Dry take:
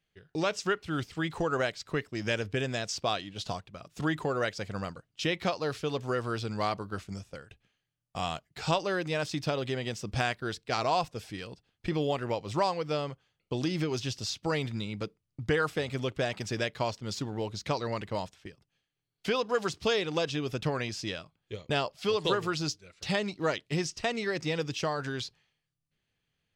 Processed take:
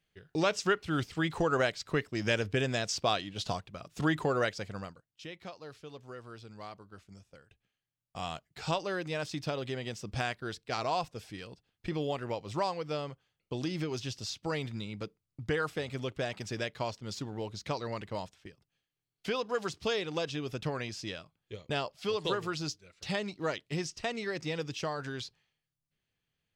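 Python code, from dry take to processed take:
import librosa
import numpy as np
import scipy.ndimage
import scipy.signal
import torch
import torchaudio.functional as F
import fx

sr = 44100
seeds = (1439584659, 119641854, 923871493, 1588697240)

y = fx.gain(x, sr, db=fx.line((4.39, 1.0), (4.85, -6.0), (5.06, -15.0), (6.94, -15.0), (8.36, -4.0)))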